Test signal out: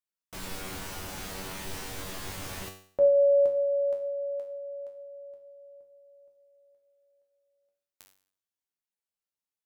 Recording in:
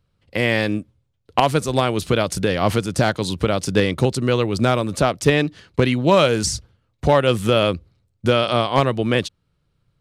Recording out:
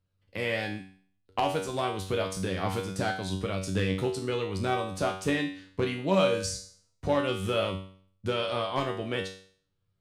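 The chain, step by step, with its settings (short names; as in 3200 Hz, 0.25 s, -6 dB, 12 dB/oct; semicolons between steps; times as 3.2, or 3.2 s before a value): resonator 95 Hz, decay 0.52 s, harmonics all, mix 90%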